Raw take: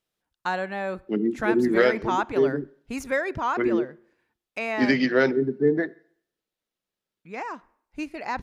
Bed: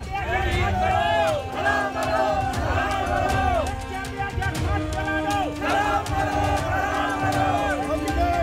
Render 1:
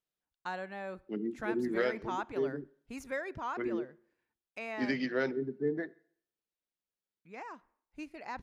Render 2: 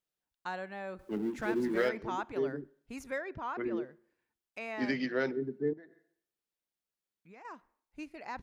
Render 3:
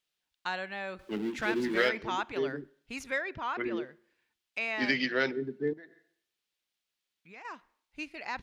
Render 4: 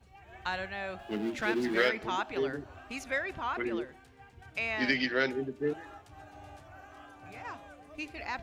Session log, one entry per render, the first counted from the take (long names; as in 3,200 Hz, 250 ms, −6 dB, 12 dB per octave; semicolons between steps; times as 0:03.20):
level −11.5 dB
0:00.99–0:01.89: mu-law and A-law mismatch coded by mu; 0:03.18–0:03.77: high-frequency loss of the air 120 metres; 0:05.73–0:07.45: downward compressor, threshold −50 dBFS
parametric band 3,200 Hz +12 dB 2.1 octaves
mix in bed −27.5 dB